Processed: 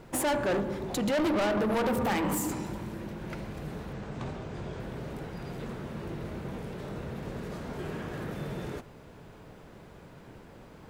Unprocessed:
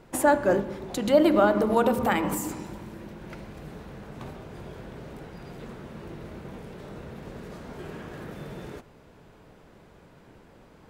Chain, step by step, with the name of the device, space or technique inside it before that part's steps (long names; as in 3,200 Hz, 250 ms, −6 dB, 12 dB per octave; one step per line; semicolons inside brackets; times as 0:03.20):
0:03.93–0:04.80: Butterworth low-pass 8,500 Hz
open-reel tape (soft clipping −27.5 dBFS, distortion −5 dB; parametric band 120 Hz +2.5 dB 0.99 octaves; white noise bed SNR 47 dB)
level +2.5 dB